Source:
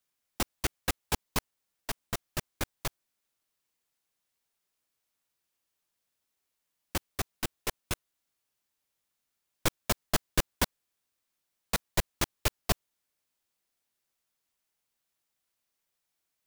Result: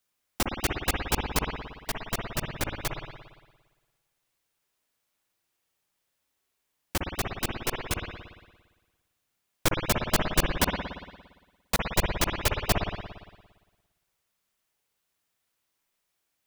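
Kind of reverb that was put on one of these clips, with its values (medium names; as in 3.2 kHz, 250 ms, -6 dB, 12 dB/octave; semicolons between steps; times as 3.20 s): spring tank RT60 1.3 s, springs 57 ms, chirp 75 ms, DRR 1 dB; trim +3 dB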